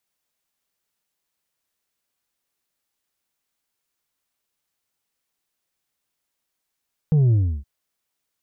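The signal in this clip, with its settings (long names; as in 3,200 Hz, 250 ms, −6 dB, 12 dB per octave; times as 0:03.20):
bass drop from 160 Hz, over 0.52 s, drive 4 dB, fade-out 0.32 s, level −14 dB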